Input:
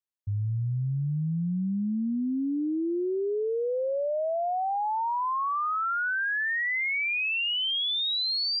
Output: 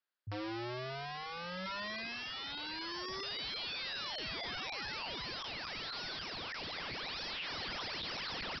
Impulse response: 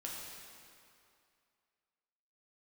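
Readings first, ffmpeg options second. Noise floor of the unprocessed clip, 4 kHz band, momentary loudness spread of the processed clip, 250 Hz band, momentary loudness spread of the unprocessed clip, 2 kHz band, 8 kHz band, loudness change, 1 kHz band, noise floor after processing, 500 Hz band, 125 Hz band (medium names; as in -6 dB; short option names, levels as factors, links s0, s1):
-28 dBFS, -9.0 dB, 3 LU, -18.0 dB, 4 LU, -12.5 dB, no reading, -12.0 dB, -14.5 dB, -44 dBFS, -16.5 dB, -19.5 dB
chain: -af "highpass=240,equalizer=f=1500:w=2.9:g=10,acompressor=threshold=0.0562:ratio=12,aresample=11025,aeval=exprs='(mod(100*val(0)+1,2)-1)/100':c=same,aresample=44100,volume=1.41"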